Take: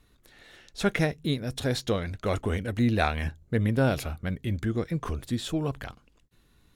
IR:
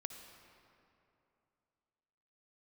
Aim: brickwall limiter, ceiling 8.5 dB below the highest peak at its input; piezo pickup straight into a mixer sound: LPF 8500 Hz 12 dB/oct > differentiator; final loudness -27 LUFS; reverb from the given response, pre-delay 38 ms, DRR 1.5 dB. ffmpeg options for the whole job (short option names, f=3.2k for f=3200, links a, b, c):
-filter_complex "[0:a]alimiter=limit=-18dB:level=0:latency=1,asplit=2[a][b];[1:a]atrim=start_sample=2205,adelay=38[c];[b][c]afir=irnorm=-1:irlink=0,volume=1dB[d];[a][d]amix=inputs=2:normalize=0,lowpass=8.5k,aderivative,volume=17dB"